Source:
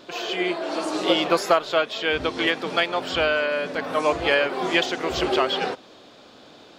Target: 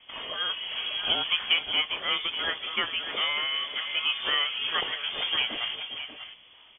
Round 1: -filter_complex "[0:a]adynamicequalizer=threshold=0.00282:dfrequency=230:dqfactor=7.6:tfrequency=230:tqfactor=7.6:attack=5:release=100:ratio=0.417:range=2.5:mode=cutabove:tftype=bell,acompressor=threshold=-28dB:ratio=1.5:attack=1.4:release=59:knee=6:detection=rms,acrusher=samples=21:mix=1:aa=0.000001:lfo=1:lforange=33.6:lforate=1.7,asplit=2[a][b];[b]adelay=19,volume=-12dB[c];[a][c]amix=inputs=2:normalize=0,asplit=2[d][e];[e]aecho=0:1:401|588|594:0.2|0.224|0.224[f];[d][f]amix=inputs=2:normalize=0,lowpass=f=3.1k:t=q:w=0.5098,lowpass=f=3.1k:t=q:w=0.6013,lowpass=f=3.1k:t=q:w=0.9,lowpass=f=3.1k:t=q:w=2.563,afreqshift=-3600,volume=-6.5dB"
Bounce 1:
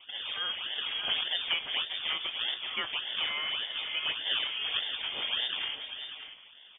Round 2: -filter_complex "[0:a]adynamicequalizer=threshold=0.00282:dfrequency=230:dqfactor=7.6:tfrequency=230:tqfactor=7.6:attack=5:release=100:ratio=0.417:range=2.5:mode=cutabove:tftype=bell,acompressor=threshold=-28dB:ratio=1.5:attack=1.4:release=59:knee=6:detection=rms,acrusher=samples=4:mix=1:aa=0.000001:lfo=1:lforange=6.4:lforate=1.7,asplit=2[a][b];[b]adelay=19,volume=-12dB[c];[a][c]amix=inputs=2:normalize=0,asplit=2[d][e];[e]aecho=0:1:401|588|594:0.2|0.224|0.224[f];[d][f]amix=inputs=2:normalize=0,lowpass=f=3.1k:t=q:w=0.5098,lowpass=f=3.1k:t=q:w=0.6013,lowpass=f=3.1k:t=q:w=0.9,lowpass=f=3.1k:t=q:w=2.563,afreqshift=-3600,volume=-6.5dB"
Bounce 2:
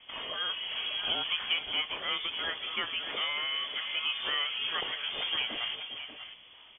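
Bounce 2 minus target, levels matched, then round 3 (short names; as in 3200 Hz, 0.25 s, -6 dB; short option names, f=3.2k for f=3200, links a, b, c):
compressor: peak gain reduction +6.5 dB
-filter_complex "[0:a]adynamicequalizer=threshold=0.00282:dfrequency=230:dqfactor=7.6:tfrequency=230:tqfactor=7.6:attack=5:release=100:ratio=0.417:range=2.5:mode=cutabove:tftype=bell,acrusher=samples=4:mix=1:aa=0.000001:lfo=1:lforange=6.4:lforate=1.7,asplit=2[a][b];[b]adelay=19,volume=-12dB[c];[a][c]amix=inputs=2:normalize=0,asplit=2[d][e];[e]aecho=0:1:401|588|594:0.2|0.224|0.224[f];[d][f]amix=inputs=2:normalize=0,lowpass=f=3.1k:t=q:w=0.5098,lowpass=f=3.1k:t=q:w=0.6013,lowpass=f=3.1k:t=q:w=0.9,lowpass=f=3.1k:t=q:w=2.563,afreqshift=-3600,volume=-6.5dB"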